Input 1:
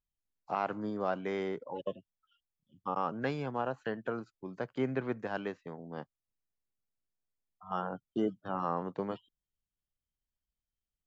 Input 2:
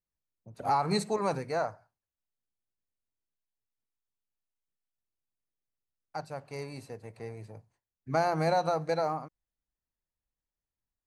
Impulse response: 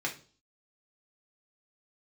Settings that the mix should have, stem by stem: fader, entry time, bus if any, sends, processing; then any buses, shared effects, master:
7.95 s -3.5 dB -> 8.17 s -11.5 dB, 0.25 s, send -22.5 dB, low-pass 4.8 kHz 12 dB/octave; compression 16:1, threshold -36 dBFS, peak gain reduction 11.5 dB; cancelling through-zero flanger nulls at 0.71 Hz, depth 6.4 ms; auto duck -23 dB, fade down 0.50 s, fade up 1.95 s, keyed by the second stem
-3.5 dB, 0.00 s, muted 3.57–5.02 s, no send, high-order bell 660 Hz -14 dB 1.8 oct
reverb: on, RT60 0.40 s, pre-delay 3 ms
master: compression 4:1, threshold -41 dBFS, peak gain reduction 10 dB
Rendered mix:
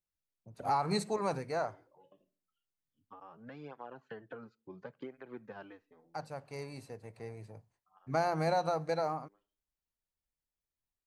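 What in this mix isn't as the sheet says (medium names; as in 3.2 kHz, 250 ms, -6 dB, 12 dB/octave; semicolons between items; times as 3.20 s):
stem 2: missing high-order bell 660 Hz -14 dB 1.8 oct; master: missing compression 4:1, threshold -41 dBFS, peak gain reduction 10 dB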